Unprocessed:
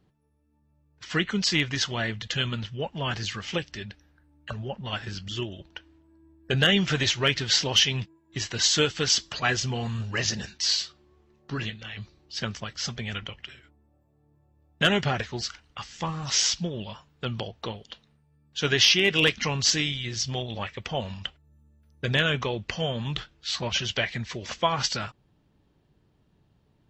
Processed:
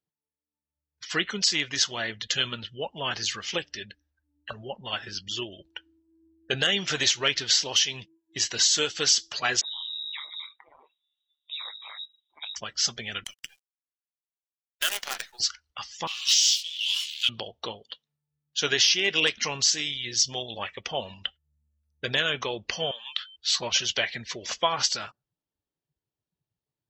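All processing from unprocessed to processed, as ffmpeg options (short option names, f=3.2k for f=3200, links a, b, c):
-filter_complex "[0:a]asettb=1/sr,asplit=3[a][b][c];[a]atrim=end=9.614[d];[b]atrim=start=9.61:end=12.56,asetpts=PTS-STARTPTS,afade=t=in:d=0.004:c=qsin,afade=t=out:st=2.946:d=0.004:c=qsin,tremolo=f=150:d=0.947,acompressor=threshold=-35dB:ratio=4:attack=3.2:release=140:knee=1:detection=peak,lowpass=f=3.3k:t=q:w=0.5098,lowpass=f=3.3k:t=q:w=0.6013,lowpass=f=3.3k:t=q:w=0.9,lowpass=f=3.3k:t=q:w=2.563,afreqshift=-3900[e];[c]atrim=start=12.556[f];[d][e]acrossfade=d=0.004:c1=hsin:c2=qsin[g];[g][f]acrossfade=d=0.004:c1=qsin:c2=hsin,asettb=1/sr,asplit=3[h][i][j];[h]atrim=end=13.244[k];[i]atrim=start=13.24:end=15.4,asetpts=PTS-STARTPTS,afade=t=in:d=0.004:c=qsin,afade=t=out:st=2.156:d=0.004:c=qsin,highpass=1k,acrusher=bits=5:dc=4:mix=0:aa=0.000001[l];[j]atrim=start=15.396[m];[k][l]acrossfade=d=0.004:c1=hsin:c2=qsin[n];[n][m]acrossfade=d=0.004:c1=qsin:c2=hsin,asettb=1/sr,asplit=3[o][p][q];[o]atrim=end=16.074[r];[p]atrim=start=16.07:end=17.29,asetpts=PTS-STARTPTS,afade=t=in:d=0.004:c=qsin,afade=t=out:st=1.216:d=0.004:c=qsin,aeval=exprs='val(0)+0.5*0.0251*sgn(val(0))':c=same,highpass=f=3k:t=q:w=3.7,asplit=2[s][t];[t]adelay=25,volume=-3dB[u];[s][u]amix=inputs=2:normalize=0,atrim=end_sample=53802[v];[q]atrim=start=17.286[w];[r][v]acrossfade=d=0.004:c1=hsin:c2=qsin[x];[x][w]acrossfade=d=0.004:c1=qsin:c2=hsin,asettb=1/sr,asplit=3[y][z][aa];[y]atrim=end=22.914[ab];[z]atrim=start=22.91:end=23.36,asetpts=PTS-STARTPTS,afade=t=in:d=0.004:c=qsin,afade=t=out:st=0.446:d=0.004:c=qsin,highpass=1.2k,aeval=exprs='val(0)+0.00355*sin(2*PI*3100*n/s)':c=same[ac];[aa]atrim=start=23.356[ad];[ab][ac]acrossfade=d=0.004:c1=hsin:c2=qsin[ae];[ae][ad]acrossfade=d=0.004:c1=qsin:c2=hsin,afftdn=nr=23:nf=-46,bass=f=250:g=-12,treble=f=4k:g=10,alimiter=limit=-10.5dB:level=0:latency=1:release=406"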